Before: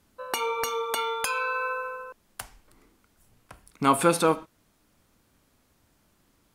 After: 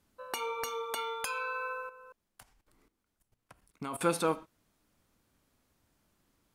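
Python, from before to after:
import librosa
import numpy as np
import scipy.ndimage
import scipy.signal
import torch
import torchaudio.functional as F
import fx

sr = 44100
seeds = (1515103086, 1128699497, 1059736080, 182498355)

y = fx.level_steps(x, sr, step_db=15, at=(1.89, 4.01))
y = F.gain(torch.from_numpy(y), -7.5).numpy()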